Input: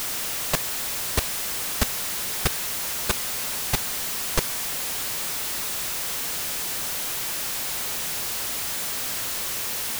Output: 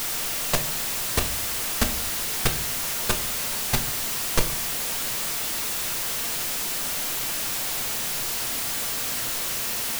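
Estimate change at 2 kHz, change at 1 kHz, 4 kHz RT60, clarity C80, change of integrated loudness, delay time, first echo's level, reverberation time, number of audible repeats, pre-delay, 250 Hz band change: +1.0 dB, +1.0 dB, 0.35 s, 18.5 dB, +1.0 dB, none, none, 0.45 s, none, 4 ms, +2.5 dB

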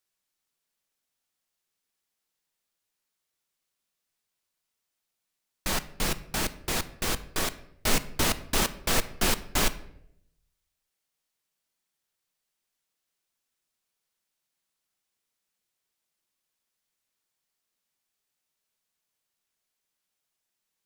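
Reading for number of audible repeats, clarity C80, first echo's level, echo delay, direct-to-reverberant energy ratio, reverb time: none, 18.5 dB, none, none, 12.0 dB, 0.70 s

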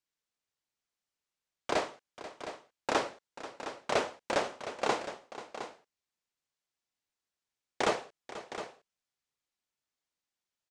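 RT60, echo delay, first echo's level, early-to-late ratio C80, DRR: none, 0.487 s, -15.0 dB, none, none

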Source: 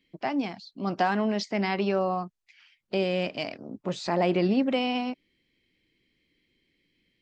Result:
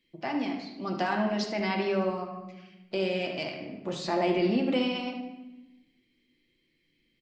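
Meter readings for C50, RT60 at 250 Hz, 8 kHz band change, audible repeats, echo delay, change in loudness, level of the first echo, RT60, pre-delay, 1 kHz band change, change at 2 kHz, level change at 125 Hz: 4.5 dB, 1.5 s, n/a, 1, 75 ms, -2.0 dB, -10.5 dB, 1.0 s, 3 ms, -3.0 dB, -1.0 dB, -3.5 dB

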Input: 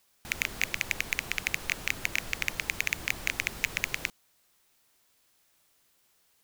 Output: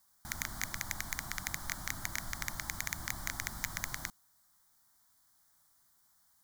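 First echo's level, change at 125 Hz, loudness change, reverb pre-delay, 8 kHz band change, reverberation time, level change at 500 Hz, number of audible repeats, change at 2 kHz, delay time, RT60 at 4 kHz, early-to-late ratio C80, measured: none, -1.0 dB, -7.5 dB, none, -1.5 dB, none, -9.5 dB, none, -10.0 dB, none, none, none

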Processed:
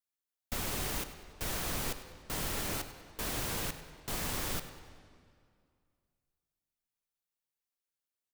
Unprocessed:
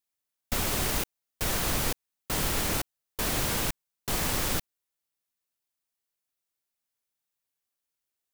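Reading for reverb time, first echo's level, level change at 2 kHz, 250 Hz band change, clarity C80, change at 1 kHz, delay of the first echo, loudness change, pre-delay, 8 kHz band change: 2.2 s, -15.5 dB, -7.0 dB, -7.0 dB, 10.5 dB, -7.0 dB, 98 ms, -7.0 dB, 12 ms, -7.5 dB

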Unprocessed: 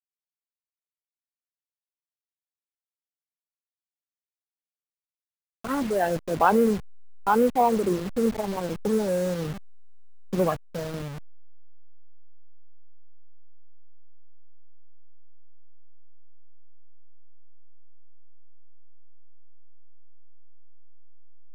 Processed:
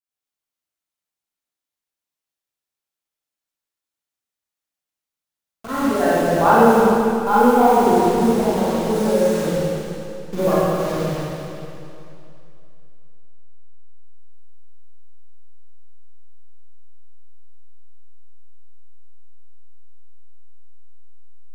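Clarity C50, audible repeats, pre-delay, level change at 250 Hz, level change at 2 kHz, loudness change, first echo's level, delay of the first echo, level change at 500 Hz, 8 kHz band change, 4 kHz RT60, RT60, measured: -6.0 dB, none, 32 ms, +8.0 dB, +8.5 dB, +8.0 dB, none, none, +8.5 dB, +8.5 dB, 2.6 s, 2.7 s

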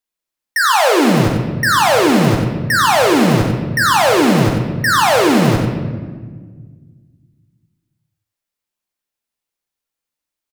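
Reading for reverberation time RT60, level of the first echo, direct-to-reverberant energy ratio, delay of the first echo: 1.5 s, -8.0 dB, 1.0 dB, 93 ms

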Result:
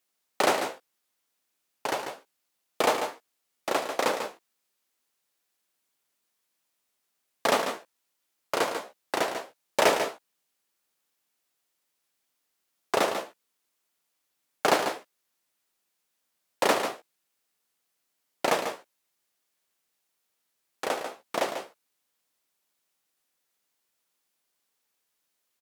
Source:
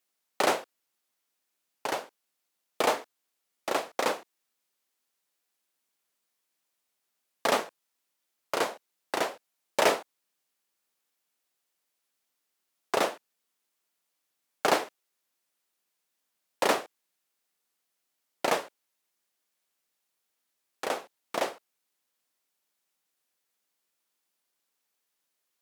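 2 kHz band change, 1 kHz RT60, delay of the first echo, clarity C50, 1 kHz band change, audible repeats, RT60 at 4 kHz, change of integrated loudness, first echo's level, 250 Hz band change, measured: +2.0 dB, none, 0.143 s, none, +2.5 dB, 1, none, +1.5 dB, -8.5 dB, +2.5 dB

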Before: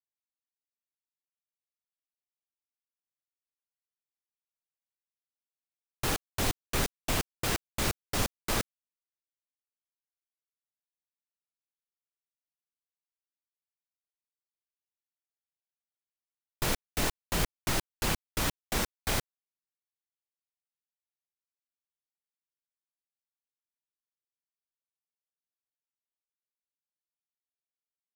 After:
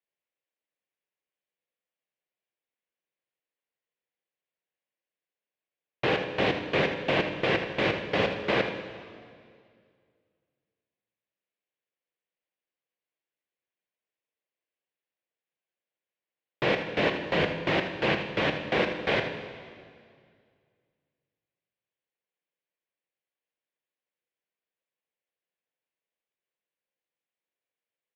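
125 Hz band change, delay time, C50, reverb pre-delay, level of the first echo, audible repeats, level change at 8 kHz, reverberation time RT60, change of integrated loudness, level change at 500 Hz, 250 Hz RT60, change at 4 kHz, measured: +1.0 dB, 79 ms, 6.0 dB, 3 ms, -10.0 dB, 1, under -20 dB, 2.1 s, +4.5 dB, +11.5 dB, 2.4 s, +2.5 dB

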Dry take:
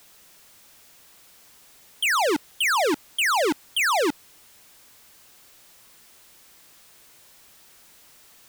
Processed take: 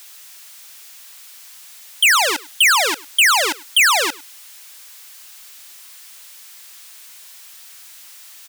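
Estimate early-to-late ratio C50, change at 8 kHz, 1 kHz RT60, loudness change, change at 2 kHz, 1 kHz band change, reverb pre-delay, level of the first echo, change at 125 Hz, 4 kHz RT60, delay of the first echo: none, +12.0 dB, none, +8.0 dB, +9.0 dB, +4.5 dB, none, -21.5 dB, n/a, none, 0.103 s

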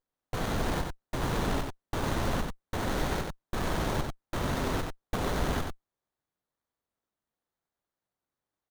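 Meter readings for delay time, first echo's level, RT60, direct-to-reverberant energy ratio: 93 ms, -4.5 dB, none, none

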